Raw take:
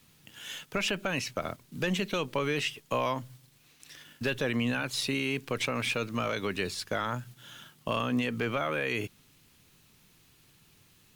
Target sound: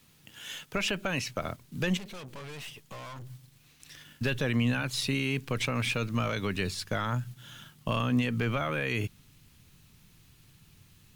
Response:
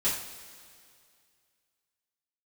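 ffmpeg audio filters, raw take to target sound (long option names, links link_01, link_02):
-filter_complex "[0:a]asubboost=boost=2.5:cutoff=210,asettb=1/sr,asplit=3[link_01][link_02][link_03];[link_01]atrim=end=1.974[link_04];[link_02]atrim=start=1.97:end=3.27,asetpts=PTS-STARTPTS,afade=type=in:duration=0.004:curve=qsin,afade=type=out:start_time=1.296:duration=0.004:curve=qsin,aeval=exprs='(tanh(112*val(0)+0.4)-tanh(0.4))/112':channel_layout=same[link_05];[link_03]atrim=start=3.266[link_06];[link_04][link_05]acrossfade=duration=0.004:curve1=hsin:curve2=qsin[link_07];[link_07][link_06]acrossfade=duration=0.004:curve1=qsin:curve2=hsin"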